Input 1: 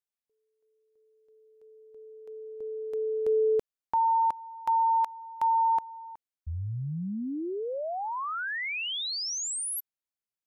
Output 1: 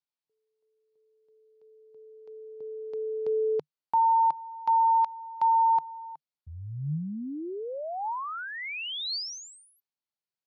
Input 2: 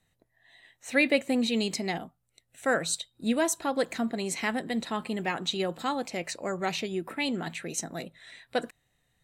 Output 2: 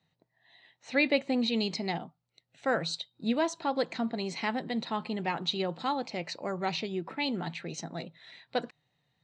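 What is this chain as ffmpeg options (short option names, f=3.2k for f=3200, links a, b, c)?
-af "highpass=110,equalizer=f=150:t=q:w=4:g=8,equalizer=f=890:t=q:w=4:g=5,equalizer=f=1.7k:t=q:w=4:g=-3,equalizer=f=4.4k:t=q:w=4:g=5,lowpass=f=5.4k:w=0.5412,lowpass=f=5.4k:w=1.3066,volume=-2.5dB"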